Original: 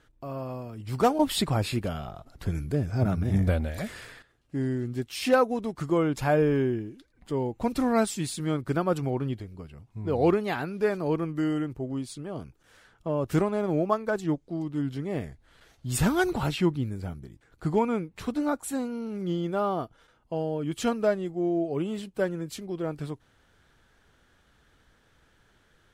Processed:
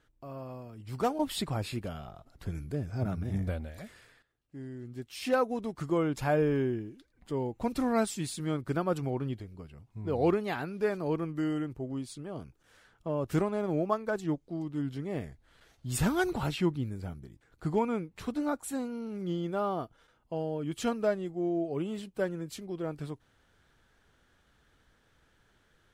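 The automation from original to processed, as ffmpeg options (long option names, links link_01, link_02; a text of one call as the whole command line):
ffmpeg -i in.wav -af "volume=3dB,afade=type=out:start_time=3.19:duration=0.83:silence=0.446684,afade=type=in:start_time=4.72:duration=0.88:silence=0.316228" out.wav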